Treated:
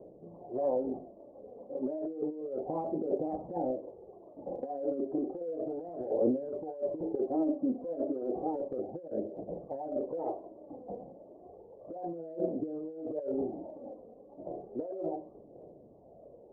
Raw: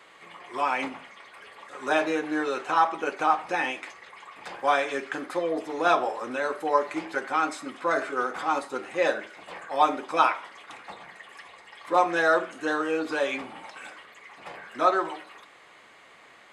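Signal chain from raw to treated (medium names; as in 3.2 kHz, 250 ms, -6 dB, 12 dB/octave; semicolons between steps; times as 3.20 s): steep low-pass 640 Hz 48 dB/octave; compressor with a negative ratio -37 dBFS, ratio -1; phaser 0.32 Hz, delay 4.2 ms, feedback 48%; trim +1.5 dB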